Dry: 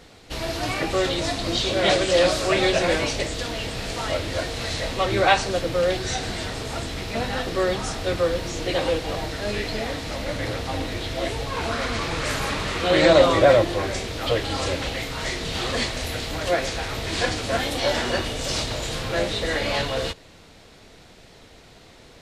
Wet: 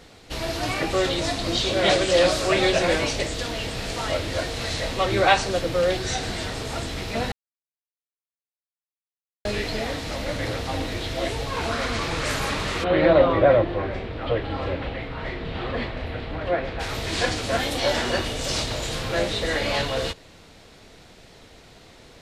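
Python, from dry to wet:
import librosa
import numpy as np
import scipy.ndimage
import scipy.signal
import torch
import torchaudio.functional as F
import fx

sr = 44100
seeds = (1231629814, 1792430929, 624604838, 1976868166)

y = fx.air_absorb(x, sr, metres=440.0, at=(12.83, 16.79), fade=0.02)
y = fx.edit(y, sr, fx.silence(start_s=7.32, length_s=2.13), tone=tone)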